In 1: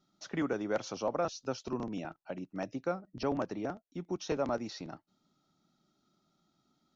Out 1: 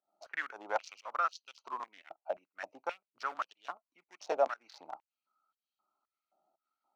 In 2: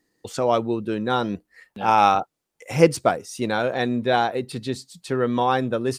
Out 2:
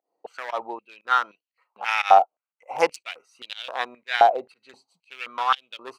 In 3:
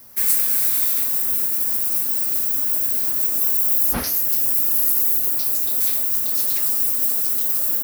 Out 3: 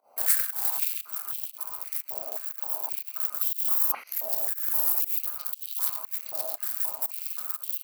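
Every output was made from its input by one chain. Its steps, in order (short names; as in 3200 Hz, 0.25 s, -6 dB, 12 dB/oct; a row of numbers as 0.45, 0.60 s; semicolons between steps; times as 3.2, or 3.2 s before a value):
Wiener smoothing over 25 samples; pump 119 bpm, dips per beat 1, -23 dB, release 0.146 s; stepped high-pass 3.8 Hz 690–3100 Hz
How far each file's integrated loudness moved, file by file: -1.5, -0.5, -10.0 LU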